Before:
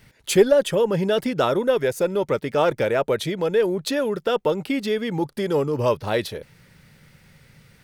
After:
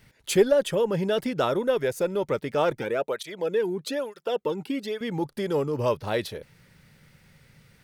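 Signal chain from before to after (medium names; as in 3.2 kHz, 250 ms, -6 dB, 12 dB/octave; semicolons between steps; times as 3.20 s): 2.78–5.01 s: cancelling through-zero flanger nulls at 1.1 Hz, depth 1.9 ms; trim -4 dB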